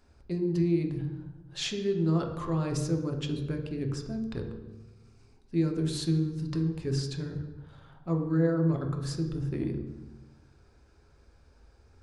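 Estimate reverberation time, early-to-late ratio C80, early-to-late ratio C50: 1.1 s, 9.0 dB, 7.0 dB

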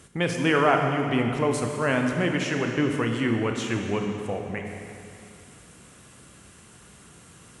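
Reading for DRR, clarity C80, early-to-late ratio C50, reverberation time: 2.5 dB, 5.0 dB, 4.0 dB, 2.6 s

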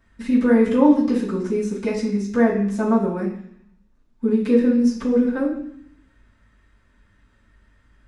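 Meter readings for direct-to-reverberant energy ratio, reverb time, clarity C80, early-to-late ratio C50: −11.0 dB, 0.65 s, 9.0 dB, 5.5 dB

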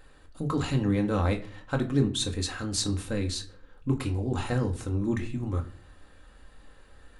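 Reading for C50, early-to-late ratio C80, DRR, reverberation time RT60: 14.0 dB, 18.5 dB, 2.5 dB, 0.45 s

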